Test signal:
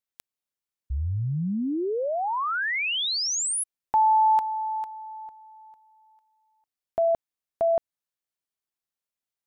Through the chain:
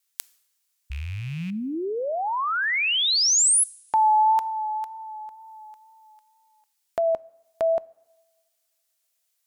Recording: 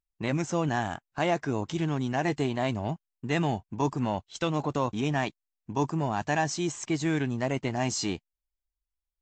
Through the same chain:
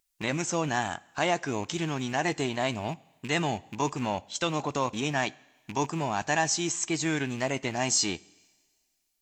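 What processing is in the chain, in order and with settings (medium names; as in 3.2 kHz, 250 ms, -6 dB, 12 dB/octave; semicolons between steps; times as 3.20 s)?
rattle on loud lows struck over -32 dBFS, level -39 dBFS; FFT filter 120 Hz 0 dB, 3.5 kHz +9 dB, 7.4 kHz +13 dB; wow and flutter 28 cents; two-slope reverb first 0.72 s, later 2.2 s, from -23 dB, DRR 20 dB; tape noise reduction on one side only encoder only; trim -4.5 dB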